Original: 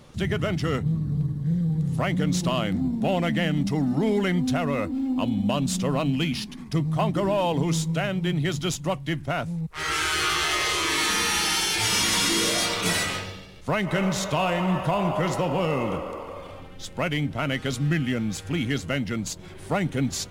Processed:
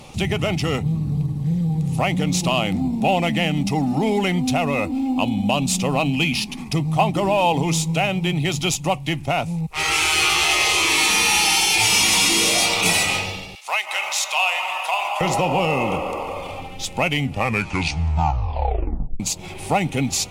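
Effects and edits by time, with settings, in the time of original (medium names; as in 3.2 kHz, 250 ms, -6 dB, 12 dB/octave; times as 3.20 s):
13.55–15.21 s: Bessel high-pass 1.2 kHz, order 4
17.13 s: tape stop 2.07 s
whole clip: peaking EQ 9.5 kHz +6 dB 2.3 oct; compression 1.5:1, threshold -31 dBFS; graphic EQ with 31 bands 800 Hz +11 dB, 1.6 kHz -10 dB, 2.5 kHz +10 dB; trim +6.5 dB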